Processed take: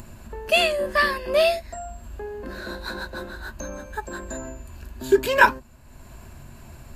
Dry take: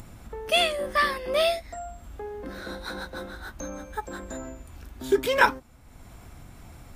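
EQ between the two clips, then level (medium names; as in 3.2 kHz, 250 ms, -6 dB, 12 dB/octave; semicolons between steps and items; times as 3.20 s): rippled EQ curve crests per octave 1.4, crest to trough 8 dB; +2.0 dB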